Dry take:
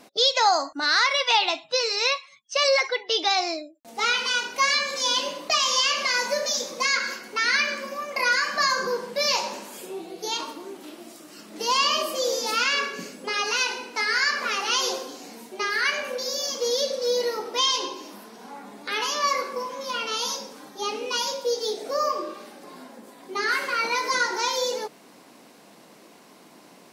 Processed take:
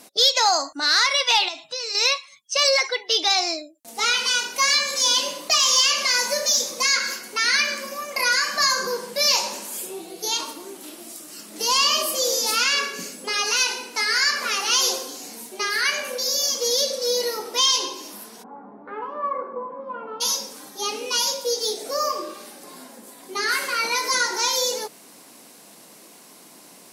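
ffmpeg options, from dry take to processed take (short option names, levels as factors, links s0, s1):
-filter_complex "[0:a]asettb=1/sr,asplit=3[s0][s1][s2];[s0]atrim=end=1.484[s3];[s1]atrim=start=1.48:end=1.95,asetpts=PTS-STARTPTS,afade=t=in:d=0.004:c=qsin,afade=t=out:st=0.466:d=0.004:c=qsin,acompressor=threshold=0.0282:ratio=4:attack=3.2:release=140:knee=1:detection=peak[s4];[s2]atrim=start=1.946[s5];[s3][s4]acrossfade=d=0.004:c1=hsin:c2=qsin[s6];[s6][s5]acrossfade=d=0.004:c1=qsin:c2=hsin,asplit=3[s7][s8][s9];[s7]afade=t=out:st=18.42:d=0.02[s10];[s8]lowpass=f=1200:w=0.5412,lowpass=f=1200:w=1.3066,afade=t=in:st=18.42:d=0.02,afade=t=out:st=20.2:d=0.02[s11];[s9]afade=t=in:st=20.2:d=0.02[s12];[s10][s11][s12]amix=inputs=3:normalize=0,equalizer=f=11000:t=o:w=1.8:g=14,acontrast=26,volume=0.531"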